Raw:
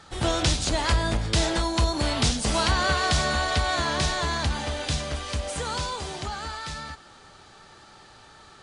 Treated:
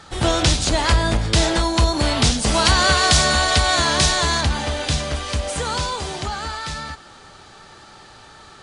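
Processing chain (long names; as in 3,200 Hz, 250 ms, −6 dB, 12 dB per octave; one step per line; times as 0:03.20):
0:02.65–0:04.41: high-shelf EQ 4,100 Hz +8.5 dB
level +6 dB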